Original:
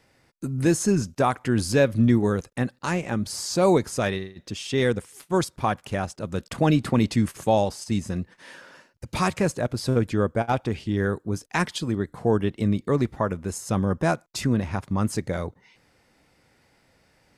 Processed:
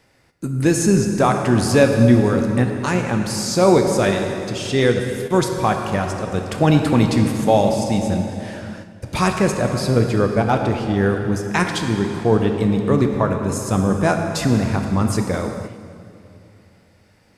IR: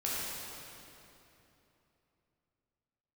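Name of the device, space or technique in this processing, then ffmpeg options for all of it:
keyed gated reverb: -filter_complex "[0:a]asplit=3[link_01][link_02][link_03];[1:a]atrim=start_sample=2205[link_04];[link_02][link_04]afir=irnorm=-1:irlink=0[link_05];[link_03]apad=whole_len=766340[link_06];[link_05][link_06]sidechaingate=range=-6dB:threshold=-51dB:ratio=16:detection=peak,volume=-6.5dB[link_07];[link_01][link_07]amix=inputs=2:normalize=0,volume=2dB"

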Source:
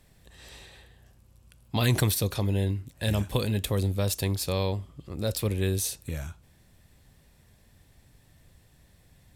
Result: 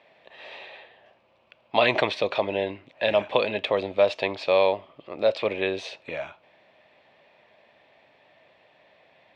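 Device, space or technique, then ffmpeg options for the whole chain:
phone earpiece: -af "highpass=490,equalizer=frequency=620:width_type=q:width=4:gain=10,equalizer=frequency=900:width_type=q:width=4:gain=3,equalizer=frequency=1500:width_type=q:width=4:gain=-4,equalizer=frequency=2400:width_type=q:width=4:gain=5,lowpass=frequency=3300:width=0.5412,lowpass=frequency=3300:width=1.3066,volume=8dB"

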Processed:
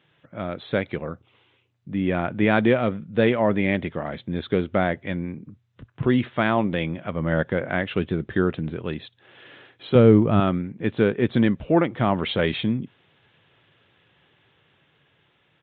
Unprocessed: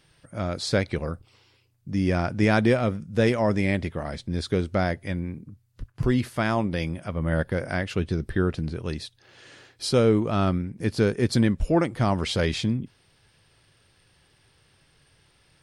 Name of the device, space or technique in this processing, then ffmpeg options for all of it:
Bluetooth headset: -filter_complex "[0:a]asettb=1/sr,asplit=3[link_01][link_02][link_03];[link_01]atrim=end=9.954[link_04];[link_02]atrim=start=9.95:end=10.4,asetpts=PTS-STARTPTS,afade=type=in:duration=0.004:curve=qsin,afade=type=out:start_time=0.446:duration=0.004:curve=qsin,aemphasis=mode=reproduction:type=bsi[link_05];[link_03]atrim=start=10.396[link_06];[link_04][link_05]acrossfade=duration=0.004:curve1=hsin:curve2=qsin[link_07];[link_07][link_06]acrossfade=duration=0.004:curve1=qsin:curve2=hsin,highpass=140,dynaudnorm=framelen=890:gausssize=5:maxgain=4dB,aresample=8000,aresample=44100" -ar 16000 -c:a sbc -b:a 64k

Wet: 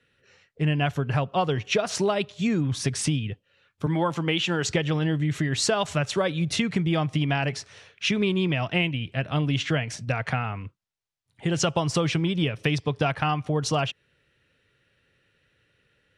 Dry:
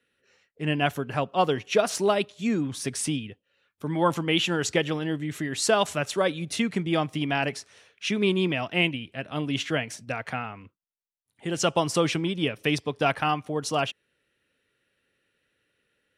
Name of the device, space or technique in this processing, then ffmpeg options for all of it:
jukebox: -filter_complex "[0:a]asettb=1/sr,asplit=3[link_01][link_02][link_03];[link_01]atrim=end=3.864[link_04];[link_02]atrim=start=3.86:end=4.69,asetpts=PTS-STARTPTS,afade=type=in:duration=0.004:curve=qsin,afade=type=out:start_time=0.826:duration=0.004:curve=qsin,highpass=180[link_05];[link_03]atrim=start=4.686[link_06];[link_04][link_05]acrossfade=duration=0.004:curve1=hsin:curve2=qsin[link_07];[link_07][link_06]acrossfade=duration=0.004:curve1=qsin:curve2=hsin,lowpass=6900,lowshelf=frequency=180:width_type=q:width=1.5:gain=6.5,acompressor=threshold=-27dB:ratio=5,volume=6dB"

